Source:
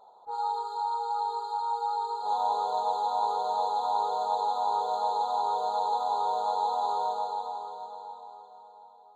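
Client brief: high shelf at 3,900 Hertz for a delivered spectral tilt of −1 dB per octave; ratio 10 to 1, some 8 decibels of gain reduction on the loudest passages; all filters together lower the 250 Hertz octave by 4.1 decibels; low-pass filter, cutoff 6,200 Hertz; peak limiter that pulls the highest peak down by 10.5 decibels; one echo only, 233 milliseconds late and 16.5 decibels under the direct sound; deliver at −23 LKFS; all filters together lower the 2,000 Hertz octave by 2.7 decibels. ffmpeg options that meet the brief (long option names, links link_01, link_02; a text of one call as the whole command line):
ffmpeg -i in.wav -af "lowpass=6200,equalizer=frequency=250:width_type=o:gain=-5.5,equalizer=frequency=2000:width_type=o:gain=-3.5,highshelf=frequency=3900:gain=-6.5,acompressor=threshold=-33dB:ratio=10,alimiter=level_in=12.5dB:limit=-24dB:level=0:latency=1,volume=-12.5dB,aecho=1:1:233:0.15,volume=20.5dB" out.wav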